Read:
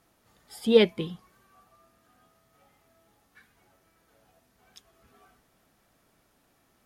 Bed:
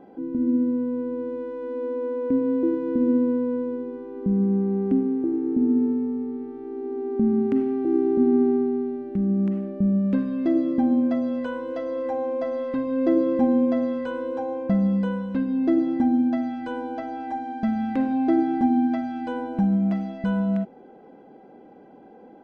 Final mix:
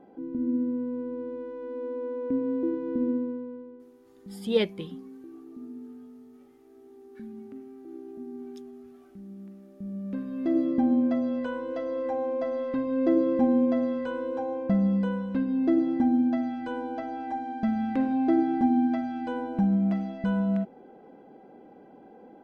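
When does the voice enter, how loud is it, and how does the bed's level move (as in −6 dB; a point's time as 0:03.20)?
3.80 s, −5.5 dB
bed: 0:03.03 −5.5 dB
0:03.91 −21 dB
0:09.59 −21 dB
0:10.59 −2.5 dB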